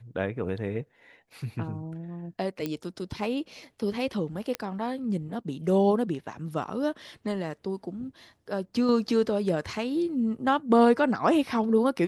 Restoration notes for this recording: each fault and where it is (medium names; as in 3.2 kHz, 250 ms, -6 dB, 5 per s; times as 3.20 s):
2.66 s: pop -17 dBFS
4.55 s: pop -14 dBFS